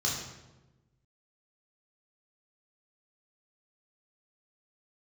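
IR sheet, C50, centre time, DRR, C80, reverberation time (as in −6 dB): 3.0 dB, 53 ms, −4.5 dB, 5.5 dB, 1.1 s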